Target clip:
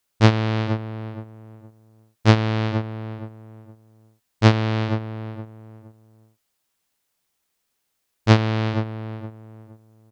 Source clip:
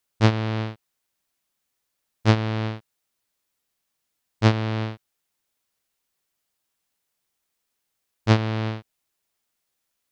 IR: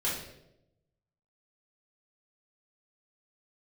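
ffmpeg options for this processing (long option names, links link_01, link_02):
-filter_complex "[0:a]asplit=2[link_01][link_02];[link_02]adelay=467,lowpass=frequency=1200:poles=1,volume=-9dB,asplit=2[link_03][link_04];[link_04]adelay=467,lowpass=frequency=1200:poles=1,volume=0.28,asplit=2[link_05][link_06];[link_06]adelay=467,lowpass=frequency=1200:poles=1,volume=0.28[link_07];[link_01][link_03][link_05][link_07]amix=inputs=4:normalize=0,volume=3.5dB"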